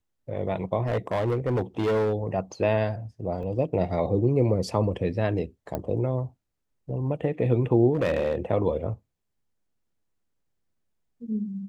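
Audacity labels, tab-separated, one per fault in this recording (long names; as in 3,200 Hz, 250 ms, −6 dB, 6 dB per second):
0.870000	2.140000	clipping −21 dBFS
3.430000	3.430000	drop-out 4.1 ms
5.750000	5.750000	click −17 dBFS
7.940000	8.350000	clipping −19.5 dBFS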